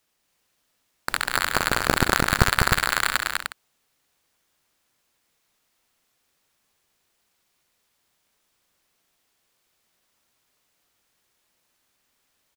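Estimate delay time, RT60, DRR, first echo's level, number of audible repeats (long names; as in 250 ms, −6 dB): 66 ms, no reverb audible, no reverb audible, −12.0 dB, 5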